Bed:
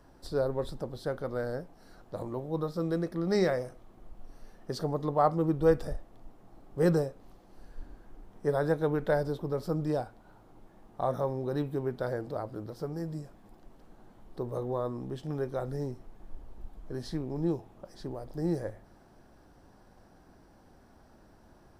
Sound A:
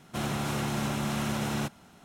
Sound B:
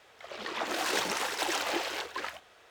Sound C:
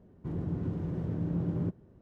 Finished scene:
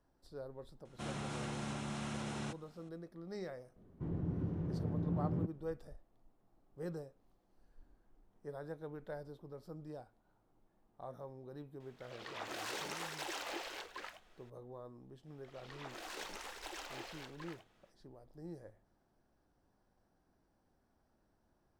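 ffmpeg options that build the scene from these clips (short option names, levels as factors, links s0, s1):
-filter_complex "[2:a]asplit=2[s0][s1];[0:a]volume=0.126[s2];[1:a]aresample=22050,aresample=44100[s3];[3:a]aemphasis=mode=reproduction:type=50kf[s4];[s0]alimiter=limit=0.0944:level=0:latency=1:release=13[s5];[s3]atrim=end=2.04,asetpts=PTS-STARTPTS,volume=0.282,afade=t=in:d=0.004:c=hsin,afade=t=out:st=2.036:d=0.004:c=hsin,adelay=850[s6];[s4]atrim=end=2.01,asetpts=PTS-STARTPTS,volume=0.596,afade=t=in:d=0.004:c=hsin,afade=t=out:st=2.006:d=0.004:c=hsin,adelay=3760[s7];[s5]atrim=end=2.7,asetpts=PTS-STARTPTS,volume=0.282,afade=t=in:d=0.004:c=hsin,afade=t=out:st=2.696:d=0.004:c=hsin,adelay=11800[s8];[s1]atrim=end=2.7,asetpts=PTS-STARTPTS,volume=0.158,afade=t=in:d=0.05,afade=t=out:st=2.65:d=0.05,adelay=672084S[s9];[s2][s6][s7][s8][s9]amix=inputs=5:normalize=0"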